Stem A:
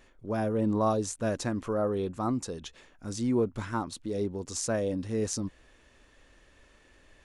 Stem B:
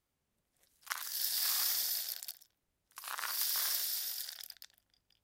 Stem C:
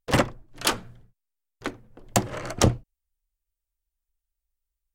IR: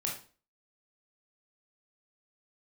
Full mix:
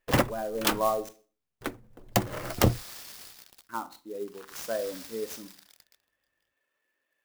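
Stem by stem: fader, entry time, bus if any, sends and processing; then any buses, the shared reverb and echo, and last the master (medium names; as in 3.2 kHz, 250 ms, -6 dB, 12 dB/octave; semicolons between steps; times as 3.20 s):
-1.0 dB, 0.00 s, muted 1.09–3.69 s, send -9 dB, frequency weighting A; spectral contrast expander 1.5:1
-9.5 dB, 1.30 s, no send, none
-2.5 dB, 0.00 s, no send, none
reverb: on, RT60 0.40 s, pre-delay 18 ms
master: sampling jitter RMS 0.03 ms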